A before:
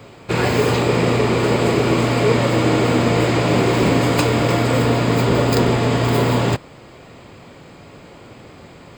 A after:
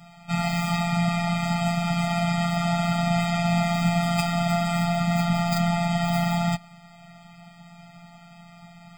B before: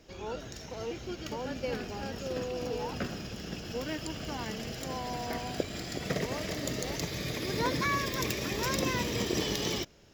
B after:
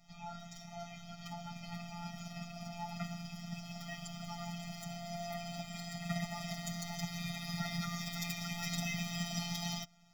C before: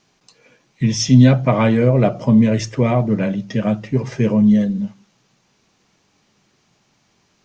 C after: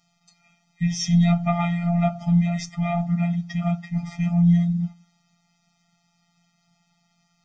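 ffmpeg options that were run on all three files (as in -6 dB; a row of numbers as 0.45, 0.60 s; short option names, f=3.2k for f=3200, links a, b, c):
-af "afftfilt=real='hypot(re,im)*cos(PI*b)':imag='0':win_size=1024:overlap=0.75,afftfilt=real='re*eq(mod(floor(b*sr/1024/300),2),0)':imag='im*eq(mod(floor(b*sr/1024/300),2),0)':win_size=1024:overlap=0.75"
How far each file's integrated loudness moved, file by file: -7.0, -7.5, -6.5 LU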